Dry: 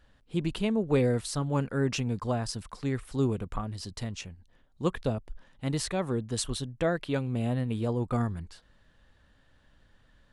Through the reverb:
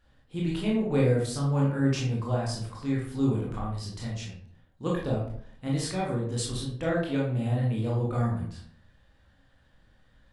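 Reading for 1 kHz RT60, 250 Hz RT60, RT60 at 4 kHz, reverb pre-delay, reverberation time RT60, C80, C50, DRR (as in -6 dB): 0.55 s, 0.70 s, 0.35 s, 18 ms, 0.60 s, 8.0 dB, 3.0 dB, -4.5 dB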